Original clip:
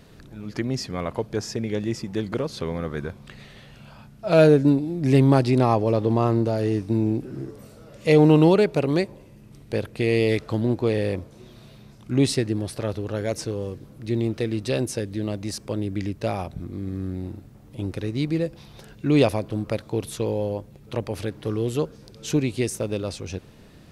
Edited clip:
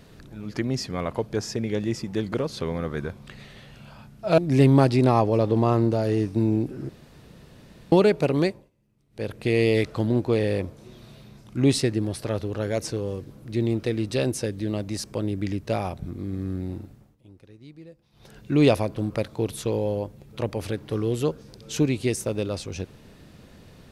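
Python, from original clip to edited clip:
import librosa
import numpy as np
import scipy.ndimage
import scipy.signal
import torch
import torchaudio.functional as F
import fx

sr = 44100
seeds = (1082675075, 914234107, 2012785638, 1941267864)

y = fx.edit(x, sr, fx.cut(start_s=4.38, length_s=0.54),
    fx.room_tone_fill(start_s=7.43, length_s=1.03),
    fx.fade_down_up(start_s=8.97, length_s=0.93, db=-21.0, fade_s=0.27),
    fx.fade_down_up(start_s=17.27, length_s=1.82, db=-21.0, fade_s=0.44, curve='qsin'), tone=tone)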